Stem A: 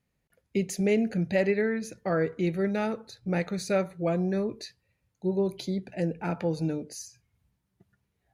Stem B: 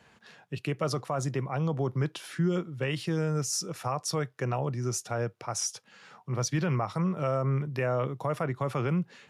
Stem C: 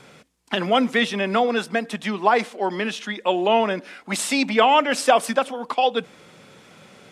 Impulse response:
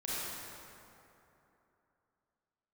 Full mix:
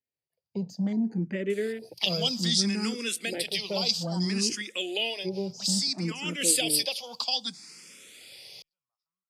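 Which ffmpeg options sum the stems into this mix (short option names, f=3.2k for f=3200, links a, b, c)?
-filter_complex "[0:a]afwtdn=0.0158,highpass=130,volume=1dB,asplit=2[a][b];[1:a]bandpass=f=6k:t=q:w=0.83:csg=0,adelay=2100,volume=-13.5dB[c];[2:a]highshelf=f=4.9k:g=4,aexciter=amount=6.3:drive=1.2:freq=2.1k,adelay=1500,volume=1.5dB,afade=t=out:st=5.09:d=0.23:silence=0.281838,afade=t=in:st=6.15:d=0.32:silence=0.298538[d];[b]apad=whole_len=502507[e];[c][e]sidechaingate=range=-33dB:threshold=-55dB:ratio=16:detection=peak[f];[a][f][d]amix=inputs=3:normalize=0,equalizer=f=4.8k:t=o:w=0.25:g=15,acrossover=split=410|3000[g][h][i];[h]acompressor=threshold=-35dB:ratio=6[j];[g][j][i]amix=inputs=3:normalize=0,asplit=2[k][l];[l]afreqshift=0.61[m];[k][m]amix=inputs=2:normalize=1"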